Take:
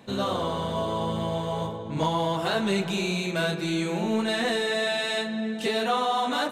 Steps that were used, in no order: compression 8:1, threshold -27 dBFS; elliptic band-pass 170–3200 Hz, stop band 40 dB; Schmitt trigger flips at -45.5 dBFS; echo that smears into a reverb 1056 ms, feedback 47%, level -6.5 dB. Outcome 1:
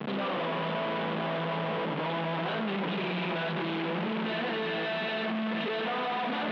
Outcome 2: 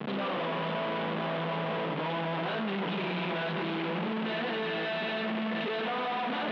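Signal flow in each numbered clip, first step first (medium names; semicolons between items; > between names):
compression > echo that smears into a reverb > Schmitt trigger > elliptic band-pass; echo that smears into a reverb > compression > Schmitt trigger > elliptic band-pass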